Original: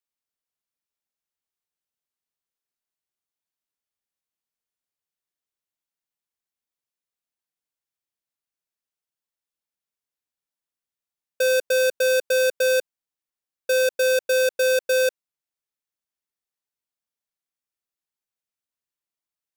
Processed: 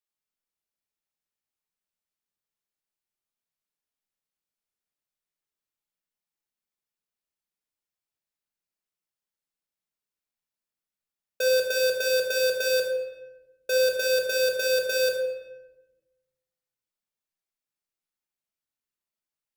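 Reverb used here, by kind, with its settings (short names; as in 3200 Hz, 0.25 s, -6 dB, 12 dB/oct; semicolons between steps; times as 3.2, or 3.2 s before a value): shoebox room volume 520 m³, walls mixed, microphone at 1.4 m; gain -4.5 dB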